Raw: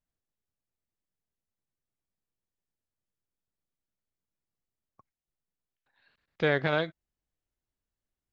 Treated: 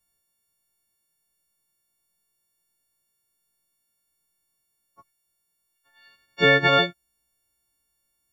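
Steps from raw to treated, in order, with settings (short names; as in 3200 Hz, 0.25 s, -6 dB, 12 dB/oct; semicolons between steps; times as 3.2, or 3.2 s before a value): frequency quantiser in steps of 4 st; gain +6.5 dB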